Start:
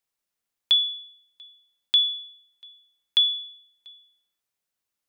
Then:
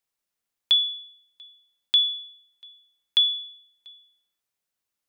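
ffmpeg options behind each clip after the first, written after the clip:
-af anull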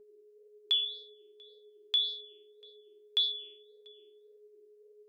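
-af "aeval=exprs='val(0)+0.00447*sin(2*PI*420*n/s)':c=same,flanger=delay=4.8:depth=9.2:regen=64:speed=1.8:shape=sinusoidal,volume=-4.5dB"

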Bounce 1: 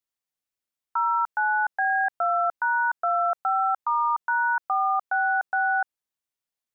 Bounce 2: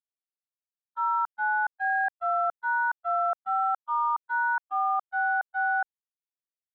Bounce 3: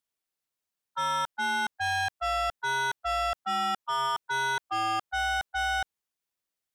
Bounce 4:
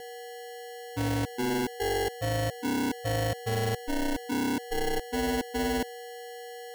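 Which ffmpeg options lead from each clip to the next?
-af "agate=range=-50dB:threshold=-22dB:ratio=16:detection=peak,volume=2dB"
-af "asoftclip=type=tanh:threshold=-34.5dB,volume=8dB"
-af "aeval=exprs='val(0)+0.0112*sin(2*PI*13000*n/s)':c=same,acrusher=samples=36:mix=1:aa=0.000001"

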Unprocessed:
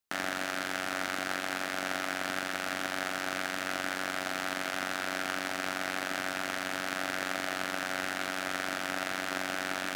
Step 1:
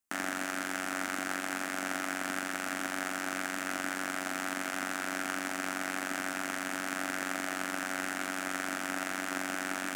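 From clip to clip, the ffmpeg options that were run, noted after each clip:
-af "equalizer=f=125:t=o:w=1:g=-10,equalizer=f=250:t=o:w=1:g=6,equalizer=f=500:t=o:w=1:g=-5,equalizer=f=4k:t=o:w=1:g=-8,equalizer=f=8k:t=o:w=1:g=5"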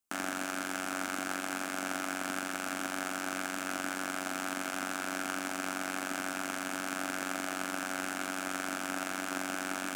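-af "equalizer=f=1.9k:w=7.2:g=-10"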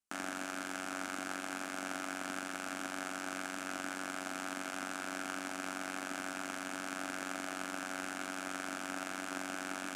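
-af "lowpass=11k,volume=-4.5dB"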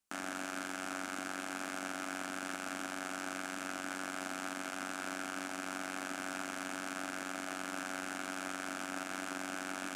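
-af "alimiter=level_in=2.5dB:limit=-24dB:level=0:latency=1:release=122,volume=-2.5dB,volume=5dB"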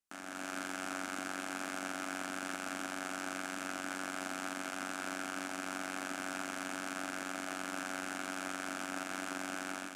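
-af "dynaudnorm=f=250:g=3:m=7dB,volume=-6.5dB"

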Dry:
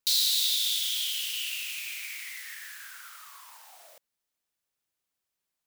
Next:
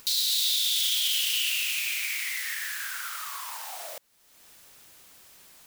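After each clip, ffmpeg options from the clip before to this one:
-filter_complex "[0:a]asplit=2[a][b];[b]acompressor=mode=upward:threshold=-30dB:ratio=2.5,volume=1dB[c];[a][c]amix=inputs=2:normalize=0,alimiter=limit=-16.5dB:level=0:latency=1:release=11"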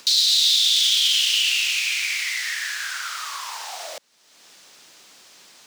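-filter_complex "[0:a]acrossover=split=160 6500:gain=0.112 1 0.0891[a][b][c];[a][b][c]amix=inputs=3:normalize=0,acrossover=split=290|440|4200[d][e][f][g];[g]acontrast=89[h];[d][e][f][h]amix=inputs=4:normalize=0,volume=6dB"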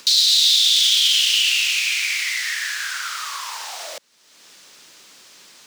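-af "equalizer=f=740:w=3.1:g=-4.5,volume=2.5dB"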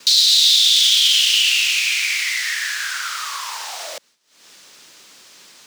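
-af "agate=range=-33dB:threshold=-46dB:ratio=3:detection=peak,volume=2dB"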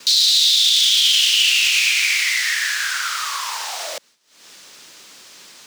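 -af "alimiter=level_in=7.5dB:limit=-1dB:release=50:level=0:latency=1,volume=-5dB"

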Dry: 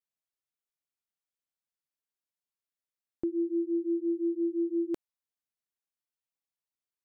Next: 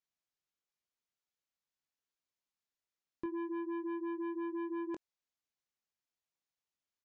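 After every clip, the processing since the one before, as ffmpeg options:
-filter_complex "[0:a]aresample=16000,asoftclip=type=tanh:threshold=-33.5dB,aresample=44100,asplit=2[a][b];[b]adelay=22,volume=-10dB[c];[a][c]amix=inputs=2:normalize=0"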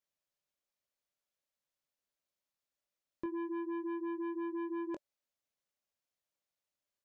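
-af "equalizer=f=580:w=5.6:g=10"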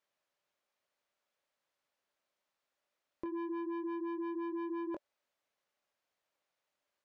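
-filter_complex "[0:a]acompressor=threshold=-40dB:ratio=6,asplit=2[a][b];[b]highpass=f=720:p=1,volume=16dB,asoftclip=type=tanh:threshold=-32dB[c];[a][c]amix=inputs=2:normalize=0,lowpass=f=1.4k:p=1,volume=-6dB,volume=2.5dB"

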